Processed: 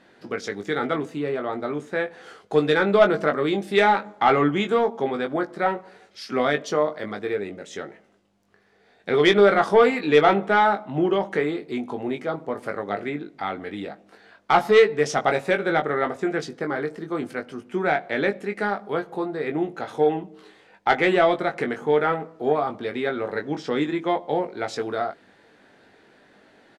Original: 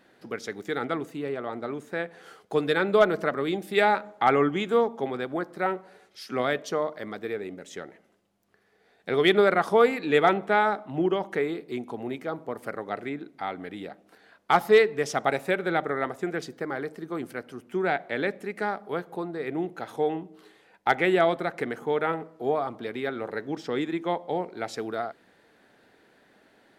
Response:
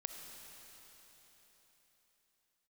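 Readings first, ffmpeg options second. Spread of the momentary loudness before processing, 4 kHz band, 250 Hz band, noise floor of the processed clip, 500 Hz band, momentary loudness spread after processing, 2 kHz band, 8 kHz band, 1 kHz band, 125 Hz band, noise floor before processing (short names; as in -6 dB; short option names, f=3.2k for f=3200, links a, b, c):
14 LU, +4.0 dB, +4.5 dB, -57 dBFS, +4.0 dB, 13 LU, +3.5 dB, +3.5 dB, +4.0 dB, +4.5 dB, -62 dBFS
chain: -filter_complex "[0:a]lowpass=7.9k,asoftclip=type=tanh:threshold=-11dB,asplit=2[a][b];[b]adelay=20,volume=-6dB[c];[a][c]amix=inputs=2:normalize=0,volume=4dB"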